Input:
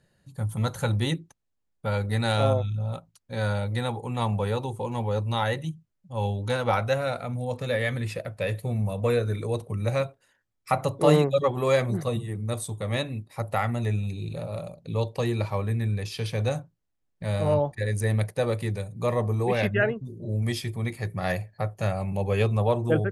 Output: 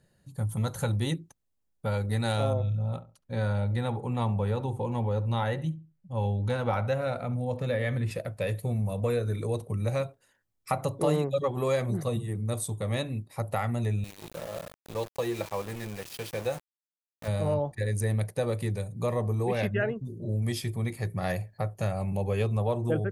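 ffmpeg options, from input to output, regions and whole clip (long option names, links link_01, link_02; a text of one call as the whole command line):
ffmpeg -i in.wav -filter_complex "[0:a]asettb=1/sr,asplit=3[link_01][link_02][link_03];[link_01]atrim=end=2.534[link_04];[link_02]atrim=start=2.53:end=8.11,asetpts=PTS-STARTPTS,afade=type=in:duration=0.004:curve=qsin,afade=type=out:start_time=5.576:duration=0.004:curve=qsin,bass=frequency=250:gain=2,treble=frequency=4000:gain=-8,asplit=2[link_05][link_06];[link_06]adelay=69,lowpass=frequency=1200:poles=1,volume=-14dB,asplit=2[link_07][link_08];[link_08]adelay=69,lowpass=frequency=1200:poles=1,volume=0.26,asplit=2[link_09][link_10];[link_10]adelay=69,lowpass=frequency=1200:poles=1,volume=0.26[link_11];[link_05][link_07][link_09][link_11]amix=inputs=4:normalize=0,atrim=end_sample=246078[link_12];[link_03]atrim=start=8.106[link_13];[link_04][link_12]acrossfade=duration=0.004:curve1=hsin:curve2=qsin[link_14];[link_14][link_13]acrossfade=duration=0.004:curve1=qsin:curve2=hsin,asettb=1/sr,asplit=3[link_15][link_16][link_17];[link_15]atrim=end=14.044[link_18];[link_16]atrim=start=14.04:end=17.28,asetpts=PTS-STARTPTS,afade=type=in:duration=0.004:curve=qsin,afade=type=out:start_time=3.236:duration=0.004:curve=qsin,bass=frequency=250:gain=-12,treble=frequency=4000:gain=-5,aecho=1:1:5.9:0.37,atrim=end_sample=142884,aeval=exprs='val(0)*gte(abs(val(0)),0.0141)':channel_layout=same[link_19];[link_17]atrim=start=17.276[link_20];[link_18][link_19]acrossfade=duration=0.004:curve1=hsin:curve2=qsin[link_21];[link_21][link_20]acrossfade=duration=0.004:curve1=qsin:curve2=hsin,tiltshelf=frequency=1200:gain=3,acompressor=threshold=-24dB:ratio=2,highshelf=frequency=5400:gain=9,volume=-2.5dB" out.wav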